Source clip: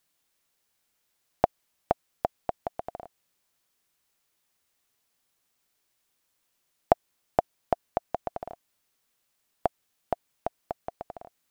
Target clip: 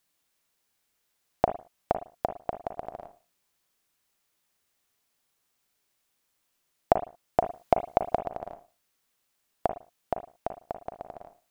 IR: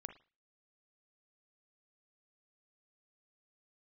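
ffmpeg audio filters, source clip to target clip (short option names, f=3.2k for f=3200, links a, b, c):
-filter_complex "[0:a]asettb=1/sr,asplit=3[a][b][c];[a]atrim=end=7.394[d];[b]atrim=start=7.39:end=8.2,asetpts=PTS-STARTPTS,afade=t=in:d=0.004:c=qsin,afade=t=out:st=0.806:d=0.004:c=qsin,acontrast=57[e];[c]atrim=start=8.196[f];[d][e]acrossfade=d=0.004:c1=hsin:c2=qsin[g];[g][f]acrossfade=d=0.004:c1=qsin:c2=hsin[h];[1:a]atrim=start_sample=2205,afade=t=out:st=0.28:d=0.01,atrim=end_sample=12789[i];[h][i]afir=irnorm=-1:irlink=0,volume=5dB"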